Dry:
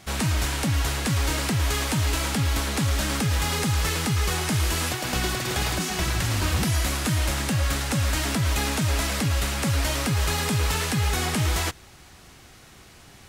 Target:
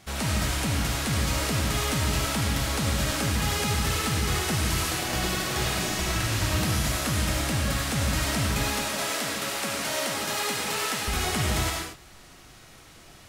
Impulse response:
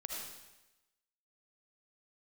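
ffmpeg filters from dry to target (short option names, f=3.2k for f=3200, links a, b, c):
-filter_complex "[0:a]asettb=1/sr,asplit=3[a][b][c];[a]atrim=end=8.634[d];[b]atrim=start=8.63:end=11.08,asetpts=PTS-STARTPTS,afade=t=in:d=0.004:c=qsin,afade=t=out:st=2.446:d=0.004:c=qsin,highpass=300[e];[c]atrim=start=11.076[f];[d][e]acrossfade=d=0.004:c1=hsin:c2=qsin[g];[g][f]acrossfade=d=0.004:c1=qsin:c2=hsin[h];[1:a]atrim=start_sample=2205,afade=t=out:st=0.3:d=0.01,atrim=end_sample=13671[i];[h][i]afir=irnorm=-1:irlink=0"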